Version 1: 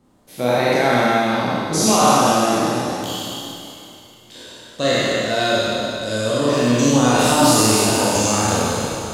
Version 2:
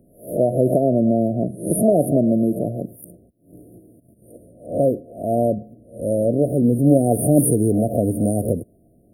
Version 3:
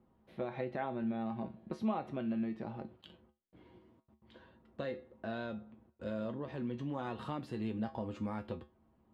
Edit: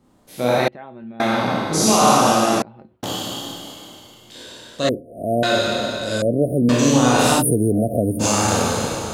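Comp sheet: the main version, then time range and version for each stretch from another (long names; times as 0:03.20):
1
0:00.68–0:01.20: punch in from 3
0:02.62–0:03.03: punch in from 3
0:04.89–0:05.43: punch in from 2
0:06.22–0:06.69: punch in from 2
0:07.40–0:08.22: punch in from 2, crossfade 0.06 s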